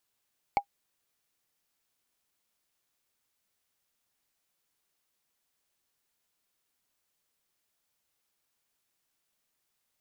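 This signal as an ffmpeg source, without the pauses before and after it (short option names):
-f lavfi -i "aevalsrc='0.168*pow(10,-3*t/0.08)*sin(2*PI*807*t)+0.0596*pow(10,-3*t/0.024)*sin(2*PI*2224.9*t)+0.0211*pow(10,-3*t/0.011)*sin(2*PI*4361*t)+0.0075*pow(10,-3*t/0.006)*sin(2*PI*7208.9*t)+0.00266*pow(10,-3*t/0.004)*sin(2*PI*10765.4*t)':d=0.45:s=44100"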